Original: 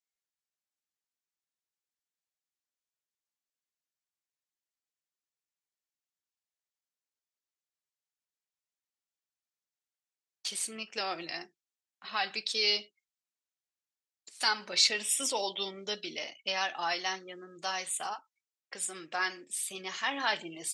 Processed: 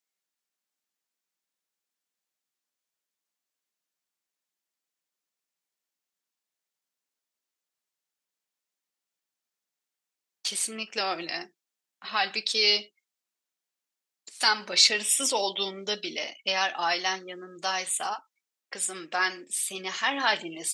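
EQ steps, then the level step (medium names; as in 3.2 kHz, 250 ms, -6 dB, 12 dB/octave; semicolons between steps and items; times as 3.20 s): brick-wall FIR high-pass 150 Hz; +5.5 dB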